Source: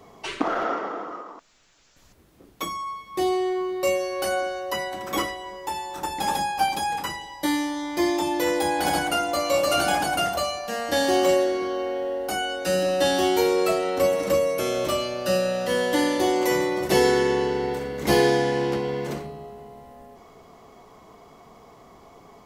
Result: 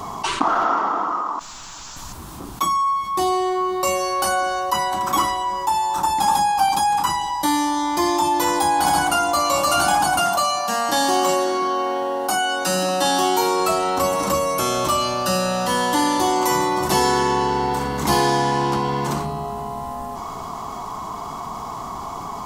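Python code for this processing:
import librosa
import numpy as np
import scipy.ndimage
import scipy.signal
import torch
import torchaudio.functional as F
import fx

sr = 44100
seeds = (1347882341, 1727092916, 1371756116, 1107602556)

y = fx.highpass(x, sr, hz=150.0, slope=12, at=(10.19, 13.6))
y = fx.graphic_eq(y, sr, hz=(500, 1000, 2000, 8000), db=(-12, 12, -8, 4))
y = fx.env_flatten(y, sr, amount_pct=50)
y = y * librosa.db_to_amplitude(1.0)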